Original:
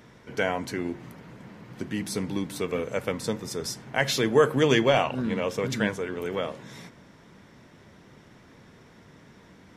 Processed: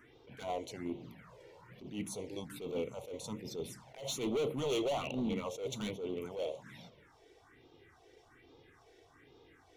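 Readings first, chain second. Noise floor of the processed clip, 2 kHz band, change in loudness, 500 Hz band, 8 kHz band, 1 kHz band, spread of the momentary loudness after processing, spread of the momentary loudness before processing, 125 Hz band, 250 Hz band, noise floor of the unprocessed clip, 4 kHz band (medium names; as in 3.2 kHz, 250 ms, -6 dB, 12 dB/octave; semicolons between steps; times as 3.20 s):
-65 dBFS, -19.5 dB, -12.0 dB, -11.5 dB, -9.5 dB, -13.0 dB, 20 LU, 22 LU, -13.5 dB, -10.5 dB, -54 dBFS, -11.5 dB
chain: phase shifter stages 4, 1.2 Hz, lowest notch 190–1800 Hz; tone controls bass -9 dB, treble -6 dB; overload inside the chain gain 29.5 dB; touch-sensitive flanger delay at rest 3.3 ms, full sweep at -35.5 dBFS; attacks held to a fixed rise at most 130 dB/s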